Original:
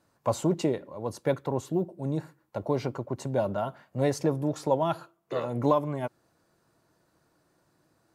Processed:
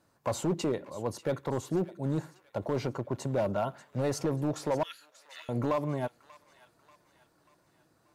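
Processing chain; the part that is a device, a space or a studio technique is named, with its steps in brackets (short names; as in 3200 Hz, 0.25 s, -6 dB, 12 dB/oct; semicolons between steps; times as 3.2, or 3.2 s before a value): 4.83–5.49 steep high-pass 1800 Hz 36 dB/oct; limiter into clipper (limiter -18 dBFS, peak gain reduction 6 dB; hard clip -22.5 dBFS, distortion -16 dB); thin delay 0.587 s, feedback 49%, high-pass 1400 Hz, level -15 dB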